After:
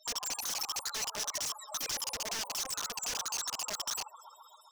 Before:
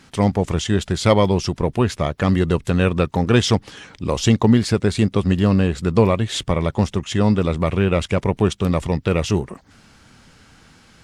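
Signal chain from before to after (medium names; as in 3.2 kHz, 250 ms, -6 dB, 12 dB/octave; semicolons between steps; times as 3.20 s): high-pass 280 Hz 24 dB/octave; treble shelf 2.8 kHz +10 dB; speed mistake 33 rpm record played at 78 rpm; loudest bins only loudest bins 4; on a send: multi-head delay 133 ms, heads first and second, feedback 61%, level -24 dB; on the sum: integer overflow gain 27 dB; peaking EQ 5.8 kHz +13 dB 0.64 oct; in parallel at -2 dB: compression, threshold -41 dBFS, peak gain reduction 16 dB; on the sum: trim -9 dB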